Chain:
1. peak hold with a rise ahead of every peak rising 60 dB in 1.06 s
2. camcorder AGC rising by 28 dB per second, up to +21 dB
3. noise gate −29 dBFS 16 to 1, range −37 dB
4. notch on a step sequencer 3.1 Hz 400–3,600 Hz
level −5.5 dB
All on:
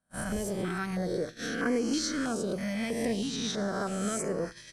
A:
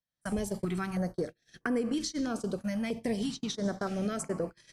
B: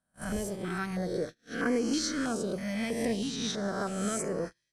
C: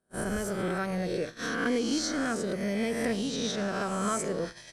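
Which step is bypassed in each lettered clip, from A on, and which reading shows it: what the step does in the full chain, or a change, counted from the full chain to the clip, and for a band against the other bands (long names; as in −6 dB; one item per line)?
1, 125 Hz band +3.5 dB
2, change in momentary loudness spread +1 LU
4, change in integrated loudness +1.0 LU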